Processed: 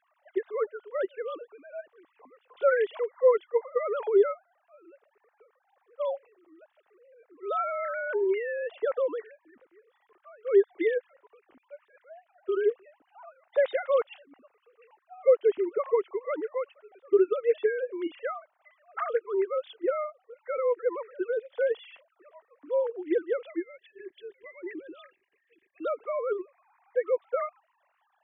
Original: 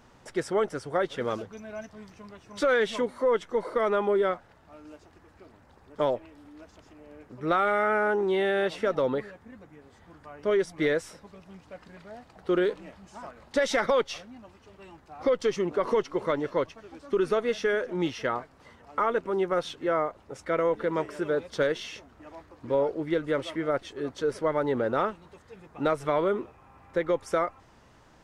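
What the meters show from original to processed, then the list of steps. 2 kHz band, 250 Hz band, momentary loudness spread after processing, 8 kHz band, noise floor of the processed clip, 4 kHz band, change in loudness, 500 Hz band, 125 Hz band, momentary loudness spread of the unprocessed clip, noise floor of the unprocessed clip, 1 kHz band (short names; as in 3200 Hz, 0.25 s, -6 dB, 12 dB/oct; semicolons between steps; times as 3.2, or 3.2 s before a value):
-6.0 dB, -5.5 dB, 17 LU, under -30 dB, -74 dBFS, under -10 dB, -1.0 dB, 0.0 dB, under -35 dB, 19 LU, -57 dBFS, -6.5 dB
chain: sine-wave speech; spectral gain 23.61–25.84, 390–1600 Hz -20 dB; gain -1 dB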